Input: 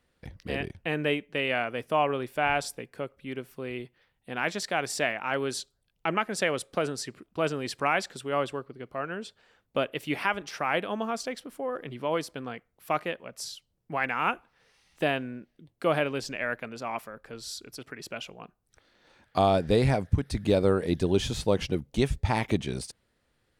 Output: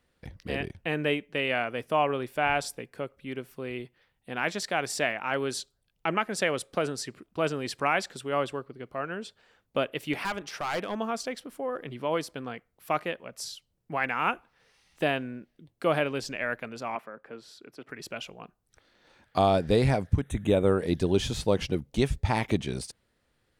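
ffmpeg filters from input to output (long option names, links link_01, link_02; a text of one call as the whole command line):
ffmpeg -i in.wav -filter_complex "[0:a]asettb=1/sr,asplit=3[link_01][link_02][link_03];[link_01]atrim=end=10.134[link_04];[link_02]atrim=start=10.13:end=10.97,asetpts=PTS-STARTPTS,afade=type=in:duration=0.004:curve=qsin,afade=type=out:start_time=0.836:duration=0.004:curve=qsin,volume=26dB,asoftclip=hard,volume=-26dB[link_05];[link_03]atrim=start=10.966[link_06];[link_04][link_05]acrossfade=duration=0.004:curve1=hsin:curve2=qsin[link_07];[link_07][link_06]acrossfade=duration=0.004:curve1=qsin:curve2=hsin,asettb=1/sr,asplit=3[link_08][link_09][link_10];[link_08]atrim=end=16.954[link_11];[link_09]atrim=start=16.95:end=17.89,asetpts=PTS-STARTPTS,afade=type=in:duration=0.004:curve=qsin,afade=type=out:start_time=0.936:duration=0.004:curve=qsin,acrossover=split=160 2800:gain=0.112 1 0.141[link_12][link_13][link_14];[link_12][link_13][link_14]amix=inputs=3:normalize=0[link_15];[link_10]atrim=start=17.886[link_16];[link_11][link_15]acrossfade=duration=0.004:curve1=hsin:curve2=qsin[link_17];[link_17][link_16]acrossfade=duration=0.004:curve1=qsin:curve2=hsin,asettb=1/sr,asplit=3[link_18][link_19][link_20];[link_18]atrim=end=20.214[link_21];[link_19]atrim=start=20.21:end=20.79,asetpts=PTS-STARTPTS,afade=type=in:duration=0.004:curve=qsin,afade=type=out:start_time=0.576:duration=0.004:curve=qsin,asuperstop=centerf=4800:order=8:qfactor=2.1[link_22];[link_20]atrim=start=20.786[link_23];[link_21][link_22]acrossfade=duration=0.004:curve1=hsin:curve2=qsin[link_24];[link_24][link_23]acrossfade=duration=0.004:curve1=qsin:curve2=hsin" out.wav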